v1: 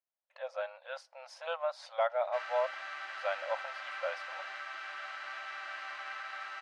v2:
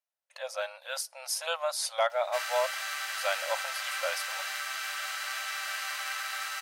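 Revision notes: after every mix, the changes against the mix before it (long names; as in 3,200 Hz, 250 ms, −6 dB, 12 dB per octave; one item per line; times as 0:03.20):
master: remove head-to-tape spacing loss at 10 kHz 36 dB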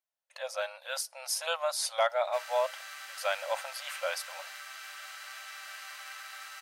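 background −9.5 dB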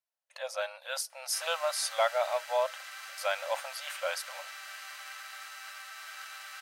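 background: entry −1.00 s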